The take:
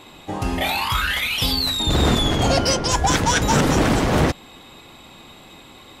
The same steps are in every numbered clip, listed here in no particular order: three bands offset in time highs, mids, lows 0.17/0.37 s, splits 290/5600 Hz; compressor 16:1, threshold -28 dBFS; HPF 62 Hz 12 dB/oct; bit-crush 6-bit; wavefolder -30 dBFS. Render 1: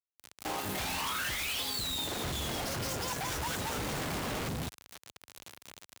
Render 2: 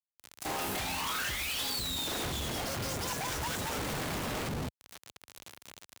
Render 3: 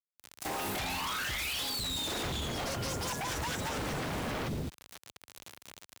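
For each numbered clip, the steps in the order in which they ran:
compressor > three bands offset in time > bit-crush > HPF > wavefolder; three bands offset in time > compressor > bit-crush > HPF > wavefolder; three bands offset in time > bit-crush > HPF > compressor > wavefolder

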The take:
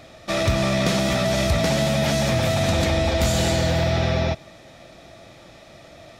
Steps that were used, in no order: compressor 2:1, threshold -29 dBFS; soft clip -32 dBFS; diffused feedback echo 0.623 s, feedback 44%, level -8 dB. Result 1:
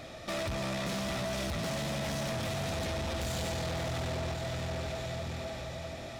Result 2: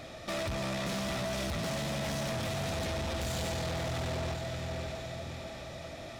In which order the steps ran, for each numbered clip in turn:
diffused feedback echo > compressor > soft clip; compressor > diffused feedback echo > soft clip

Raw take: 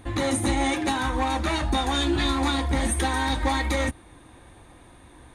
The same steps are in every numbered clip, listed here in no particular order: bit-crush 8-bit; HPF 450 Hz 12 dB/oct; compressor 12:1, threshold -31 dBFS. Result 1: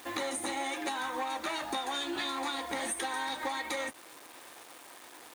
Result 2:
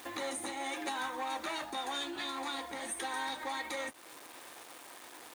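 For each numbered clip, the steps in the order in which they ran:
bit-crush > HPF > compressor; bit-crush > compressor > HPF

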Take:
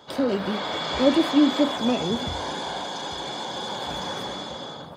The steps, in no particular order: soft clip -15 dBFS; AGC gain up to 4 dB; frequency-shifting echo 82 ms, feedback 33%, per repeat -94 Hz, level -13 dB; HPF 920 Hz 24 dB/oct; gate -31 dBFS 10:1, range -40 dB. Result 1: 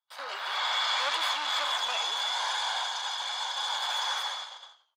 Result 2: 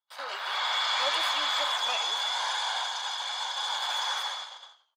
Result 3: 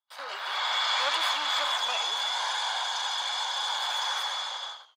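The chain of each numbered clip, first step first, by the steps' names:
gate > frequency-shifting echo > AGC > soft clip > HPF; gate > frequency-shifting echo > AGC > HPF > soft clip; soft clip > AGC > gate > frequency-shifting echo > HPF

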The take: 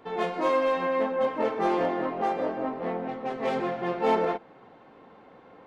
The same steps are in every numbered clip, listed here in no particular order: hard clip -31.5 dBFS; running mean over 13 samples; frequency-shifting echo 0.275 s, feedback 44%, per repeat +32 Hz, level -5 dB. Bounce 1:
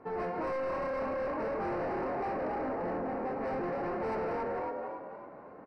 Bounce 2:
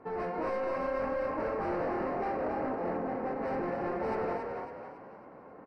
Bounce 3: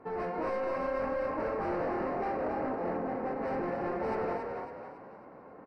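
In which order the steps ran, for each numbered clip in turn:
frequency-shifting echo > hard clip > running mean; hard clip > running mean > frequency-shifting echo; hard clip > frequency-shifting echo > running mean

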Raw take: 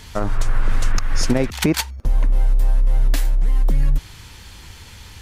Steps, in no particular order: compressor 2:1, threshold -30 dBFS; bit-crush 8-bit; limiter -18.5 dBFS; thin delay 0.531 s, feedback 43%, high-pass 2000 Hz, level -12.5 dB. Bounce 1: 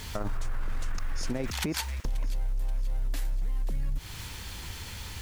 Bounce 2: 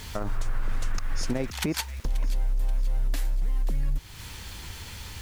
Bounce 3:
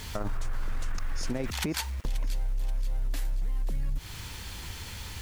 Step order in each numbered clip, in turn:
bit-crush > thin delay > limiter > compressor; thin delay > bit-crush > compressor > limiter; bit-crush > limiter > compressor > thin delay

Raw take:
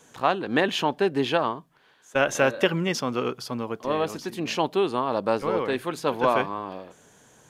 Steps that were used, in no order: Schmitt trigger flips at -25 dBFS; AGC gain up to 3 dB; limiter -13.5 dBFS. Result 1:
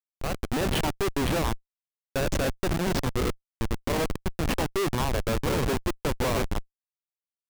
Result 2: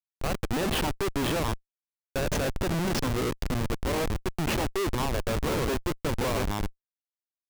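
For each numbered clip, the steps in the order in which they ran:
limiter > Schmitt trigger > AGC; AGC > limiter > Schmitt trigger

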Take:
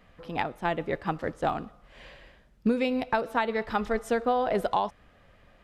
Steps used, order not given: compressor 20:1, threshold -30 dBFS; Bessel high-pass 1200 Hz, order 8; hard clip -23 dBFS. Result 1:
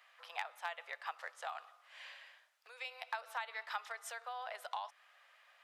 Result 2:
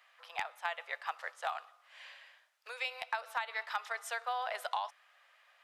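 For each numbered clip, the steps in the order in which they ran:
compressor > hard clip > Bessel high-pass; Bessel high-pass > compressor > hard clip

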